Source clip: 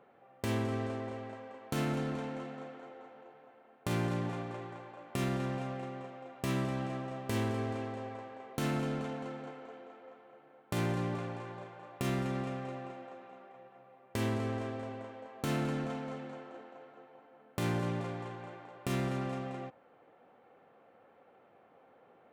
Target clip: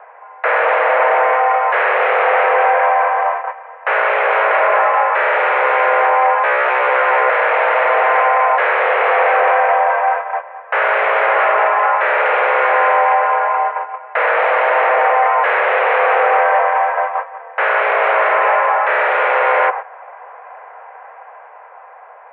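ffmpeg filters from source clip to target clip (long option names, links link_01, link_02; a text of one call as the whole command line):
ffmpeg -i in.wav -af "agate=range=-13dB:threshold=-56dB:ratio=16:detection=peak,dynaudnorm=framelen=480:gausssize=7:maxgain=4dB,apsyclip=34.5dB,aeval=exprs='1.06*sin(PI/2*2*val(0)/1.06)':channel_layout=same,highpass=frequency=220:width_type=q:width=0.5412,highpass=frequency=220:width_type=q:width=1.307,lowpass=frequency=2100:width_type=q:width=0.5176,lowpass=frequency=2100:width_type=q:width=0.7071,lowpass=frequency=2100:width_type=q:width=1.932,afreqshift=250,volume=-9dB" out.wav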